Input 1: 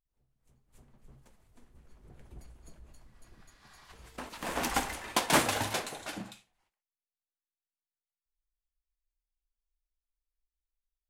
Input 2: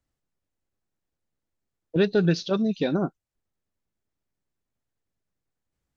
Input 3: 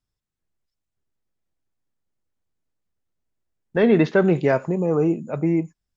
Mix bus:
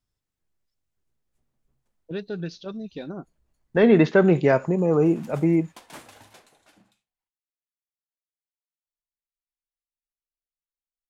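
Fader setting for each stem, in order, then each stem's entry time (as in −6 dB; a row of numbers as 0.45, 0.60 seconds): −18.5, −10.5, +0.5 decibels; 0.60, 0.15, 0.00 seconds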